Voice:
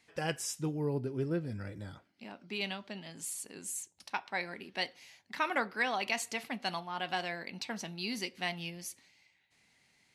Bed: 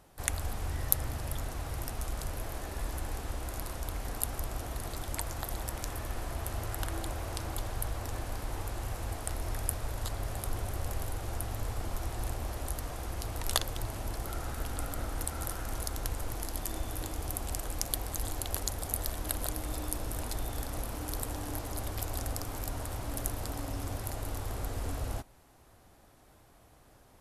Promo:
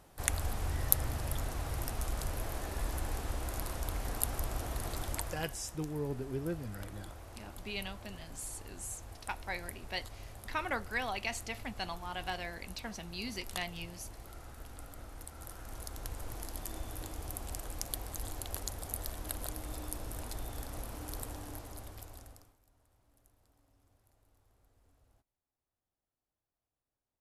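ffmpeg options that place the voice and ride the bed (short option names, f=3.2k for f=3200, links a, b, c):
-filter_complex "[0:a]adelay=5150,volume=-3.5dB[a];[1:a]volume=7dB,afade=t=out:st=5.06:d=0.51:silence=0.237137,afade=t=in:st=15.31:d=1.06:silence=0.446684,afade=t=out:st=21.21:d=1.35:silence=0.0375837[b];[a][b]amix=inputs=2:normalize=0"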